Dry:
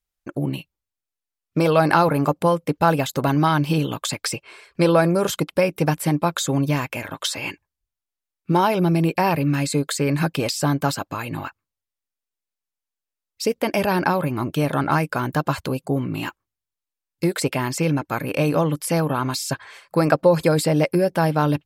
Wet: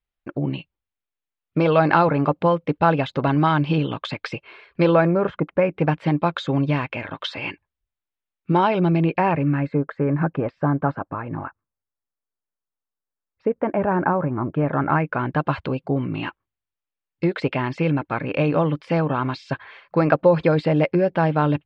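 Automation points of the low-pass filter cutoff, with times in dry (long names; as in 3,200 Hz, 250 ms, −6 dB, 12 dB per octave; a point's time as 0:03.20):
low-pass filter 24 dB per octave
0:04.87 3,500 Hz
0:05.40 1,800 Hz
0:06.09 3,500 Hz
0:08.91 3,500 Hz
0:09.85 1,600 Hz
0:14.43 1,600 Hz
0:15.54 3,300 Hz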